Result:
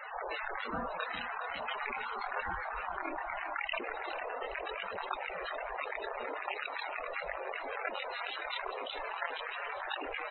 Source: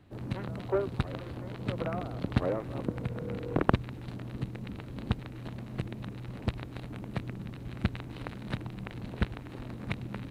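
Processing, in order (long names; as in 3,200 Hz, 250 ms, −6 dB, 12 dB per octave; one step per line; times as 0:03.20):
gate on every frequency bin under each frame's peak −20 dB weak
multi-voice chorus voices 2, 0.4 Hz, delay 25 ms, depth 4.5 ms
in parallel at −11 dB: wrap-around overflow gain 27 dB
on the sum: spectral peaks only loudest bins 32
on a send: repeating echo 411 ms, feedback 53%, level −17.5 dB
on the sum: envelope flattener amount 70%
level +6.5 dB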